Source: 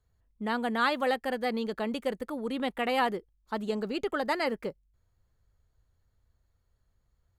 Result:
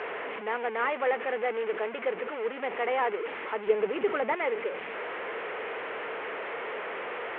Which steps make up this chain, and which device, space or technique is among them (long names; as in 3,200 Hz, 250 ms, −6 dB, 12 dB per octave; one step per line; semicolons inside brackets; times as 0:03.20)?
digital answering machine (band-pass filter 370–3,400 Hz; linear delta modulator 16 kbit/s, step −30.5 dBFS; loudspeaker in its box 370–4,300 Hz, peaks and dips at 440 Hz +9 dB, 2,100 Hz +4 dB, 3,800 Hz −9 dB)
0:03.67–0:04.35: low-shelf EQ 270 Hz +10.5 dB